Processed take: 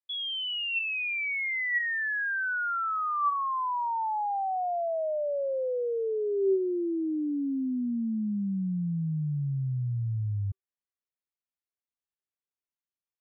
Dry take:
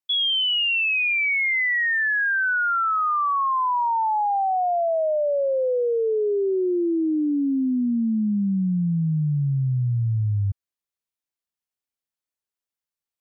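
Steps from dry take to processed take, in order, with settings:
low-pass filter 3,000 Hz 12 dB per octave
tuned comb filter 390 Hz, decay 0.2 s, harmonics odd, mix 60%

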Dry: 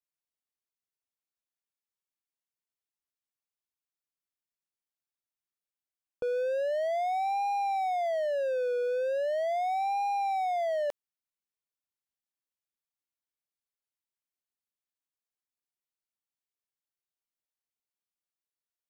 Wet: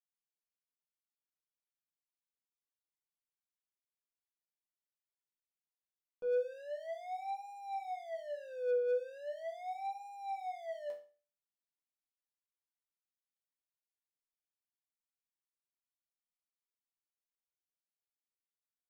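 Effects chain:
resonators tuned to a chord E3 minor, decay 0.38 s
level +4.5 dB

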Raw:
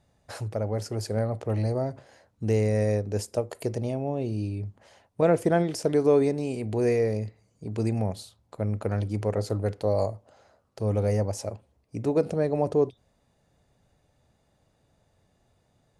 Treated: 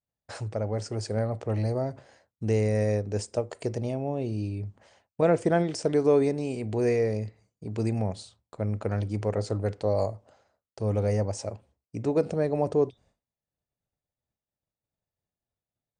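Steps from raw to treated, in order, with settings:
downward expander −51 dBFS
Chebyshev low-pass filter 9,100 Hz, order 8

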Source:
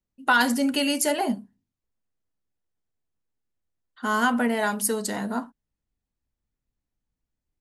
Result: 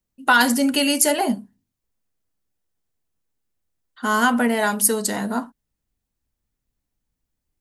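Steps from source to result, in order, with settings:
high-shelf EQ 6,900 Hz +6 dB
level +4 dB

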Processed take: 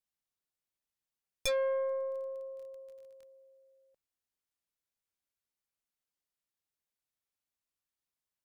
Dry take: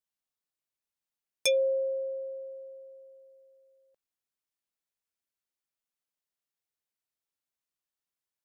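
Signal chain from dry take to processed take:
tube saturation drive 28 dB, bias 0.5
0:01.87–0:03.23: surface crackle 25 per second −48 dBFS
low-shelf EQ 140 Hz +7 dB

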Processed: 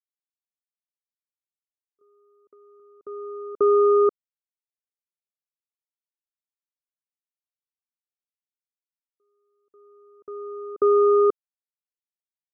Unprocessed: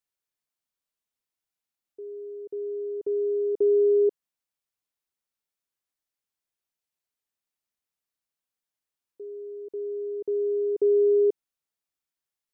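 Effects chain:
power curve on the samples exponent 3
0:02.01–0:02.80: multiband upward and downward compressor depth 70%
level +5 dB

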